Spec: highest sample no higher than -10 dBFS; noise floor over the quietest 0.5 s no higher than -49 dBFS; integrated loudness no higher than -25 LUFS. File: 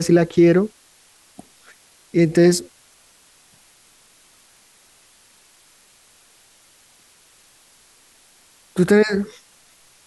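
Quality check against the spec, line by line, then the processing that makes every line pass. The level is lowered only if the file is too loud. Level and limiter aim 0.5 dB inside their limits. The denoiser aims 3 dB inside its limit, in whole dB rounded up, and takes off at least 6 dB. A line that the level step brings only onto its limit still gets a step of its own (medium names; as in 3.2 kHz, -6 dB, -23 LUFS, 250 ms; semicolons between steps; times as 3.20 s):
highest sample -5.0 dBFS: fail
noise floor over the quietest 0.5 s -54 dBFS: pass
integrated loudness -17.5 LUFS: fail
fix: trim -8 dB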